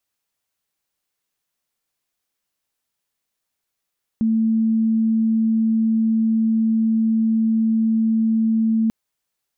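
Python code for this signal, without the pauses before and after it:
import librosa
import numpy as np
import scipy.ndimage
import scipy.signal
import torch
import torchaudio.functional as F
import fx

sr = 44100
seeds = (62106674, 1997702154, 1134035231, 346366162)

y = 10.0 ** (-15.0 / 20.0) * np.sin(2.0 * np.pi * (223.0 * (np.arange(round(4.69 * sr)) / sr)))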